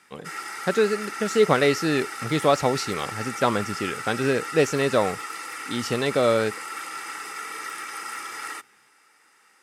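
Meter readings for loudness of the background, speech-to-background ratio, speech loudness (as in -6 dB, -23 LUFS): -33.0 LUFS, 9.0 dB, -24.0 LUFS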